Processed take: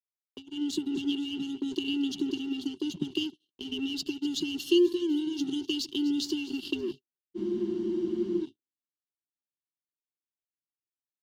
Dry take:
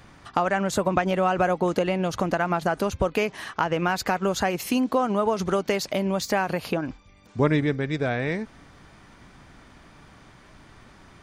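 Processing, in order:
on a send: echo with a time of its own for lows and highs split 730 Hz, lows 155 ms, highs 249 ms, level −16 dB
on the sum: frequency shifter +96 Hz
automatic gain control gain up to 6 dB
linear-phase brick-wall band-stop 400–2,700 Hz
noise gate −31 dBFS, range −56 dB
three-way crossover with the lows and the highs turned down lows −23 dB, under 250 Hz, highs −16 dB, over 4,300 Hz
in parallel at −3 dB: dead-zone distortion −42 dBFS
on the sum: low shelf with overshoot 140 Hz +10 dB, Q 1.5
frozen spectrum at 0:07.38, 1.03 s
level −5 dB

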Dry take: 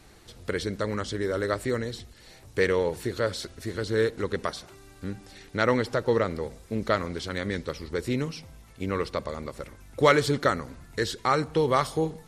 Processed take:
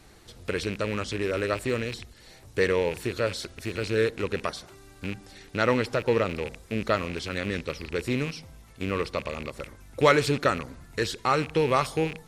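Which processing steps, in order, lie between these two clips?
loose part that buzzes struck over −39 dBFS, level −25 dBFS

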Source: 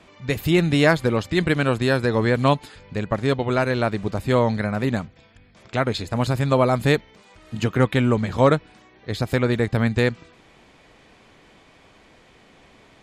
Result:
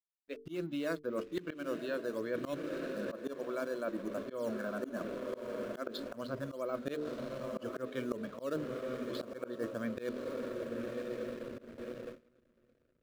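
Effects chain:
loudspeaker in its box 300–4,100 Hz, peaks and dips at 300 Hz +5 dB, 580 Hz +5 dB, 850 Hz −6 dB, 2,000 Hz −9 dB, 3,400 Hz −4 dB
in parallel at −10 dB: sample-and-hold swept by an LFO 8×, swing 160% 2.5 Hz
on the sum: noise reduction from a noise print of the clip's start 26 dB
feedback delay with all-pass diffusion 1,064 ms, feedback 49%, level −11.5 dB
slack as between gear wheels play −35 dBFS
parametric band 810 Hz −13.5 dB 0.4 octaves
mains-hum notches 50/100/150/200/250/300/350/400/450 Hz
noise gate with hold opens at −33 dBFS
volume swells 186 ms
reversed playback
downward compressor 5 to 1, threshold −34 dBFS, peak gain reduction 19.5 dB
reversed playback
level −1.5 dB

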